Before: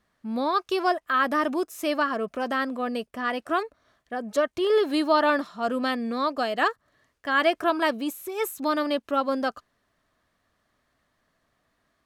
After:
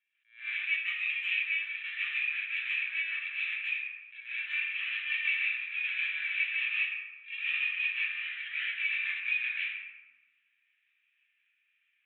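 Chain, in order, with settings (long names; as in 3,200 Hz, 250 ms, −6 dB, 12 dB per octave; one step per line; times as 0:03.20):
samples in bit-reversed order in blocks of 128 samples
elliptic high-pass filter 2,000 Hz, stop band 50 dB
high-frequency loss of the air 400 metres
linear-prediction vocoder at 8 kHz pitch kept
frequency shifter −280 Hz
downward compressor 4 to 1, threshold −45 dBFS, peak gain reduction 10.5 dB
spectral tilt +3 dB per octave
convolution reverb RT60 1.1 s, pre-delay 129 ms, DRR −9.5 dB
level that may rise only so fast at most 170 dB per second
level +3.5 dB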